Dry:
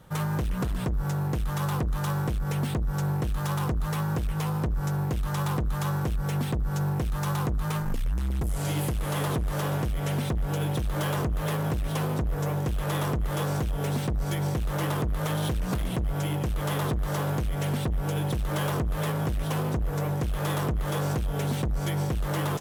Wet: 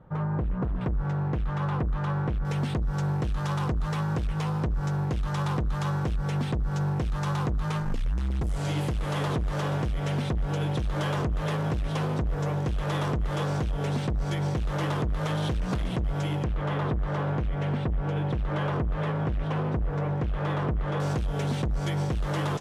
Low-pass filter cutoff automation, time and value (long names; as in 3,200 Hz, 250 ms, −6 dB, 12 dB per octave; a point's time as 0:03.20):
1,200 Hz
from 0:00.81 2,400 Hz
from 0:02.45 5,900 Hz
from 0:16.44 2,500 Hz
from 0:21.00 6,600 Hz